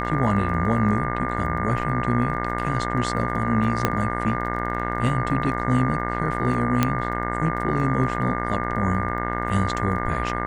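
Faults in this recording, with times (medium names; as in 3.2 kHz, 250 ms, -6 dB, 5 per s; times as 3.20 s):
buzz 60 Hz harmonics 36 -28 dBFS
crackle 17 per s -33 dBFS
whine 1.2 kHz -29 dBFS
3.85 s: pop -5 dBFS
6.83 s: pop -5 dBFS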